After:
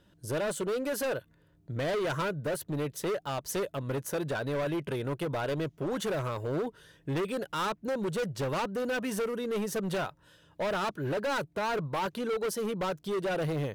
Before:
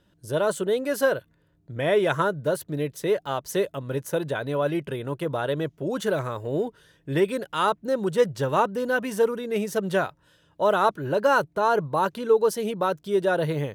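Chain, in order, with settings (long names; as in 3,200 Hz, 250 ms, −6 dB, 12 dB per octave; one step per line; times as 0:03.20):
in parallel at +0.5 dB: downward compressor, threshold −31 dBFS, peak gain reduction 15.5 dB
on the sum: hard clipping −22.5 dBFS, distortion −7 dB
level −5.5 dB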